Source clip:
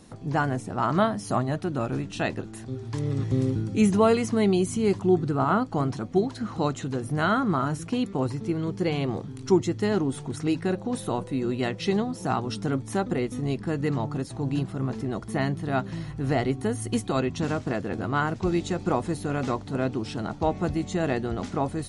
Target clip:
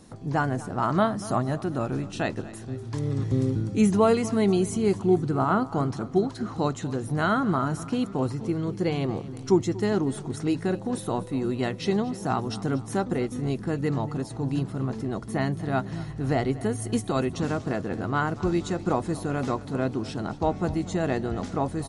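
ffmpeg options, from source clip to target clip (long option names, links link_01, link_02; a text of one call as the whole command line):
ffmpeg -i in.wav -filter_complex "[0:a]equalizer=frequency=2700:width_type=o:width=0.95:gain=-3,asplit=2[link_01][link_02];[link_02]aecho=0:1:238|476|714|952:0.126|0.0629|0.0315|0.0157[link_03];[link_01][link_03]amix=inputs=2:normalize=0" out.wav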